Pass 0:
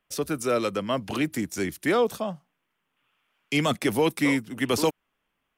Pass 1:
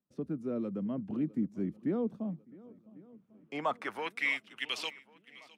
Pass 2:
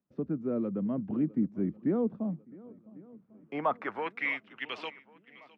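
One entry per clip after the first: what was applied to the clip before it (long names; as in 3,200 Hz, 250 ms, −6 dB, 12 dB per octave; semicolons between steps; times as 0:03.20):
band-pass filter sweep 210 Hz → 2,800 Hz, 0:02.79–0:04.37; feedback echo with a long and a short gap by turns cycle 1,097 ms, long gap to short 1.5 to 1, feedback 43%, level −22 dB
low-pass filter 1,900 Hz 12 dB per octave; level +3.5 dB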